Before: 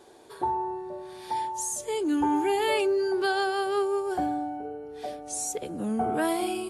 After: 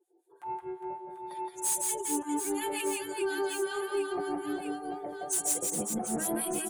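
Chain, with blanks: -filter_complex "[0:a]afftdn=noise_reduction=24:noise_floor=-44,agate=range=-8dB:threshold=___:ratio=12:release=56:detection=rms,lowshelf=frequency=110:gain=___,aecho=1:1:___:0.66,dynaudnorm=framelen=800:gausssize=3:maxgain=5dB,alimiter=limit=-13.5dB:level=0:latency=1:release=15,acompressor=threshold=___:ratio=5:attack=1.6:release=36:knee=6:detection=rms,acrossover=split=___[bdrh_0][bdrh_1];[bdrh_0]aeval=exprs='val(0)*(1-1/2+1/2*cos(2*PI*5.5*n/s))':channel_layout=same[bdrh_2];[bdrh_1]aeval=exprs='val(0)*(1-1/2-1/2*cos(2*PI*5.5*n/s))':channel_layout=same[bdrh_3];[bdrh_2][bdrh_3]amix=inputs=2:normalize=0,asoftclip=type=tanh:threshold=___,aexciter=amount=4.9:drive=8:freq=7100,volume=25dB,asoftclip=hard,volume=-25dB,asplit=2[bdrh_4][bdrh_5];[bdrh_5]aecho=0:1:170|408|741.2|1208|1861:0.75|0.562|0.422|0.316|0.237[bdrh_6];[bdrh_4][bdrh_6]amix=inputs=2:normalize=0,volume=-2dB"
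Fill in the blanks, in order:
-36dB, -3.5, 5.8, -26dB, 1100, -24dB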